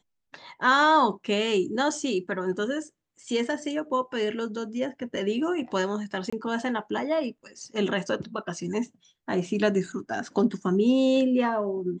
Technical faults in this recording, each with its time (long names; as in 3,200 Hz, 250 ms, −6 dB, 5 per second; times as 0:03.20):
0:06.30–0:06.33: drop-out 25 ms